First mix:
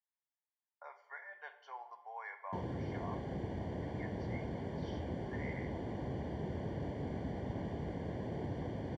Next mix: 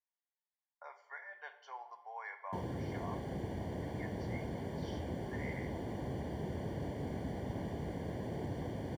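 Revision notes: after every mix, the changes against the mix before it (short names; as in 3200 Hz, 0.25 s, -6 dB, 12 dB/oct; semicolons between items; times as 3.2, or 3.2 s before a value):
master: remove air absorption 100 m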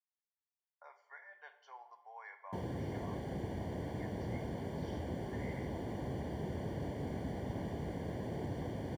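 speech -5.5 dB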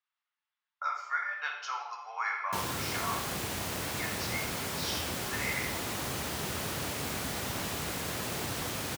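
speech: send +11.0 dB; master: remove running mean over 34 samples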